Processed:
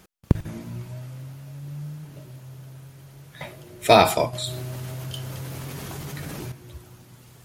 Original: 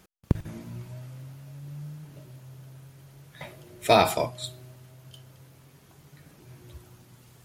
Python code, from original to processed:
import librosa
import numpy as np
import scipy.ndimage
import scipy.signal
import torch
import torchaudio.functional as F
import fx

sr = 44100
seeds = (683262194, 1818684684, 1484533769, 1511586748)

y = fx.env_flatten(x, sr, amount_pct=70, at=(4.33, 6.52))
y = y * librosa.db_to_amplitude(4.5)